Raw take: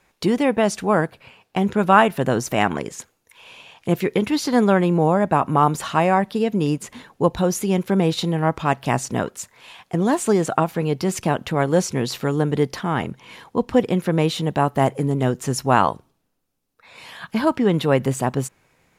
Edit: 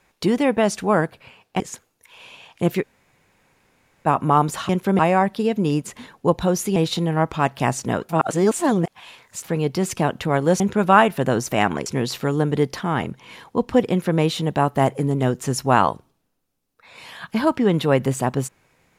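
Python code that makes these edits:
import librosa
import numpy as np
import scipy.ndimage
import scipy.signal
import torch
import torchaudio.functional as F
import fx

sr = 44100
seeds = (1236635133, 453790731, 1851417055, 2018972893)

y = fx.edit(x, sr, fx.move(start_s=1.6, length_s=1.26, to_s=11.86),
    fx.room_tone_fill(start_s=4.08, length_s=1.24, crossfade_s=0.04),
    fx.move(start_s=7.72, length_s=0.3, to_s=5.95),
    fx.reverse_span(start_s=9.35, length_s=1.35), tone=tone)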